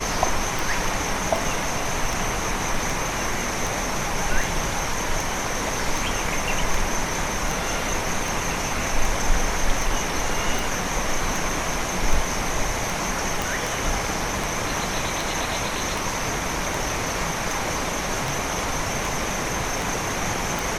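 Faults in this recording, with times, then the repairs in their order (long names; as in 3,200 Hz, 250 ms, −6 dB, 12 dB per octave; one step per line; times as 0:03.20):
scratch tick 78 rpm
0:13.42: click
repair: click removal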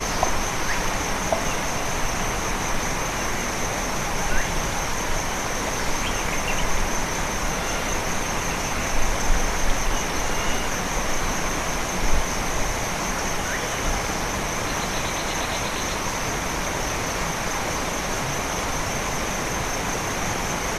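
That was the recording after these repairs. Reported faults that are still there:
0:13.42: click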